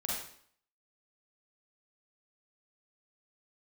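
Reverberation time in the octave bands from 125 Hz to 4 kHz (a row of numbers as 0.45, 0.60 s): 0.55, 0.60, 0.60, 0.60, 0.55, 0.55 s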